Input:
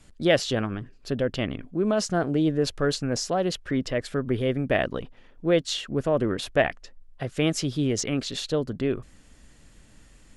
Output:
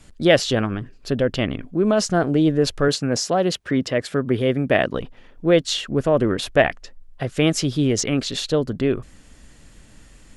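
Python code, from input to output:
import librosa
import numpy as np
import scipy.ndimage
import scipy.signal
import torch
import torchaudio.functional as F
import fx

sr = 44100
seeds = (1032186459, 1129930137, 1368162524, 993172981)

y = fx.highpass(x, sr, hz=98.0, slope=12, at=(2.88, 4.94))
y = F.gain(torch.from_numpy(y), 5.5).numpy()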